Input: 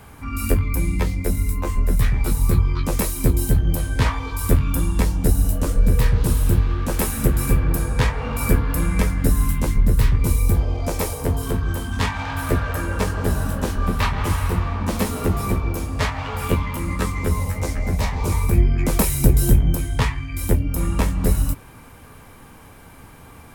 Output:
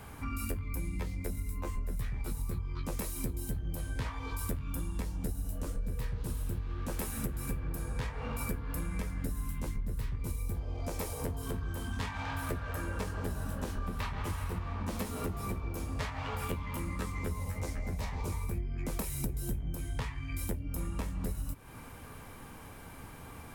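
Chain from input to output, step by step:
downward compressor, threshold −29 dBFS, peak gain reduction 19.5 dB
level −4 dB

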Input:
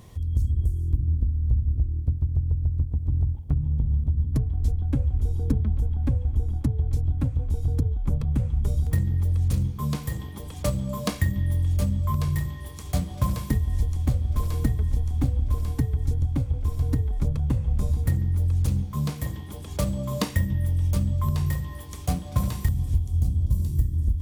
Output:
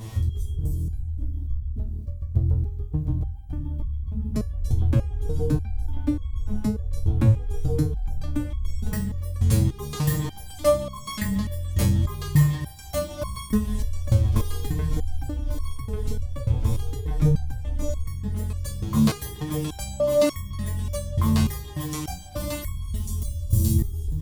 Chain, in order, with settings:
0:22.95–0:23.74: high-shelf EQ 4,200 Hz +10.5 dB
on a send: single-tap delay 316 ms −17 dB
on the sum: boost into a limiter +17.5 dB
step-sequenced resonator 3.4 Hz 110–1,100 Hz
level +3.5 dB

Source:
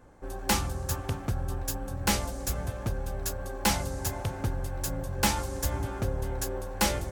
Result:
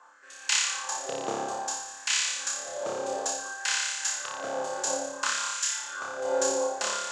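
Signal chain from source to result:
downward compressor 2.5 to 1, threshold −31 dBFS, peak gain reduction 8 dB
loudspeaker in its box 120–7,300 Hz, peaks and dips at 250 Hz −4 dB, 1,000 Hz +4 dB, 2,200 Hz −6 dB, 7,100 Hz +9 dB
auto-filter high-pass sine 0.58 Hz 440–2,300 Hz
flutter between parallel walls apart 5 metres, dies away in 1.1 s
rotating-speaker cabinet horn 1.2 Hz
level +5.5 dB

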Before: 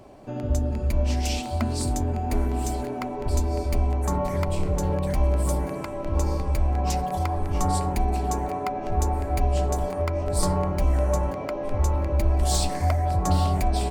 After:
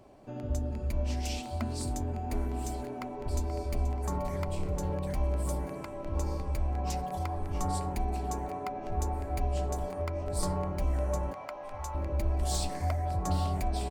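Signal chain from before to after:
0:02.96–0:03.91: delay throw 480 ms, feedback 45%, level −13 dB
0:11.33–0:11.95: low shelf with overshoot 570 Hz −10.5 dB, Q 1.5
level −8 dB

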